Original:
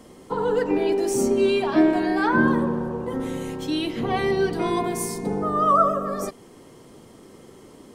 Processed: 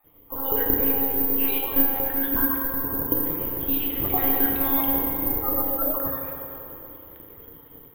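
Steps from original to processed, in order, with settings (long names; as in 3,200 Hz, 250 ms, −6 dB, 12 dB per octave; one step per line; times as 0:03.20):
time-frequency cells dropped at random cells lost 29%
automatic gain control gain up to 9 dB
one-pitch LPC vocoder at 8 kHz 270 Hz
feedback delay network reverb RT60 3 s, low-frequency decay 0.7×, high-frequency decay 0.6×, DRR −1.5 dB
bad sample-rate conversion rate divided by 3×, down filtered, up zero stuff
level −13.5 dB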